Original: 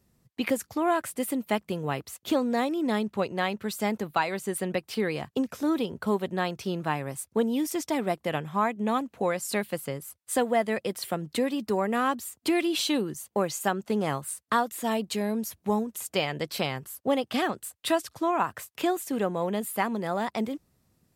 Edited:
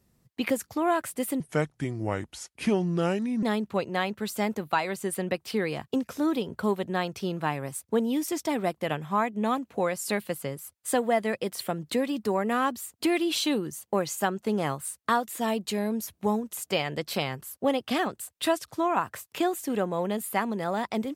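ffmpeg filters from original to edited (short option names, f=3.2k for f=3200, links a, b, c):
-filter_complex "[0:a]asplit=3[a][b][c];[a]atrim=end=1.404[d];[b]atrim=start=1.4:end=2.86,asetpts=PTS-STARTPTS,asetrate=31752,aresample=44100[e];[c]atrim=start=2.856[f];[d][e]acrossfade=d=0.004:c1=hsin:c2=hsin[g];[g][f]acrossfade=d=0.004:c1=hsin:c2=hsin"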